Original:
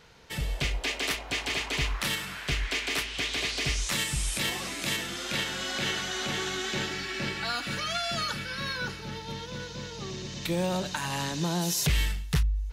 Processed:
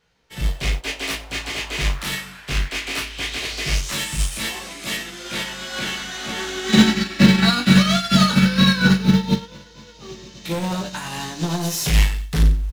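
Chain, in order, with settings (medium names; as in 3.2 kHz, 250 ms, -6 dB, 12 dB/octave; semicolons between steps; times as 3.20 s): chorus 0.18 Hz, delay 17 ms, depth 4.1 ms; saturation -31 dBFS, distortion -10 dB; 6.69–9.37 s: small resonant body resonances 200/3900 Hz, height 15 dB, ringing for 50 ms; short-mantissa float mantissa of 4-bit; doubling 37 ms -8 dB; feedback delay 91 ms, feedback 36%, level -14 dB; loudness maximiser +20.5 dB; upward expansion 2.5:1, over -26 dBFS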